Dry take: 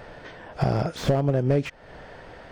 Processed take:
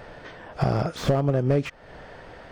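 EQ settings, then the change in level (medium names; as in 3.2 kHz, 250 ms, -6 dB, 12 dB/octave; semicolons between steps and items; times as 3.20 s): dynamic bell 1.2 kHz, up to +6 dB, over -56 dBFS, Q 6.7; 0.0 dB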